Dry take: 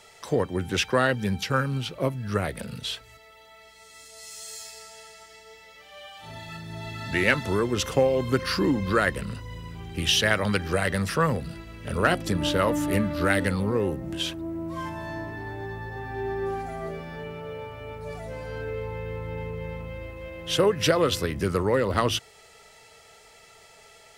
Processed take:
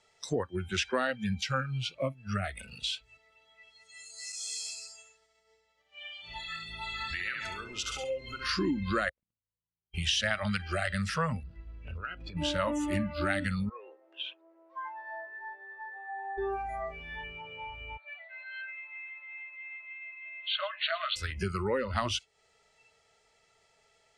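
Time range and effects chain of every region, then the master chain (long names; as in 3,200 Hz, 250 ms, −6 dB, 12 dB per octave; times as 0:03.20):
0:04.32–0:08.49: downward expander −43 dBFS + downward compressor 5 to 1, threshold −29 dBFS + repeating echo 68 ms, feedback 55%, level −5 dB
0:09.09–0:09.94: lower of the sound and its delayed copy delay 0.31 ms + noise gate −27 dBFS, range −45 dB
0:11.43–0:12.37: head-to-tape spacing loss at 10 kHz 21 dB + downward compressor 10 to 1, threshold −29 dBFS
0:13.69–0:16.38: Butterworth high-pass 440 Hz + head-to-tape spacing loss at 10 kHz 33 dB
0:17.97–0:21.16: linear-phase brick-wall band-pass 570–4,500 Hz + parametric band 890 Hz −10 dB 0.39 octaves + single-tap delay 111 ms −16 dB
whole clip: low-pass filter 8,400 Hz 24 dB per octave; noise reduction from a noise print of the clip's start 20 dB; downward compressor 2 to 1, threshold −40 dBFS; level +4.5 dB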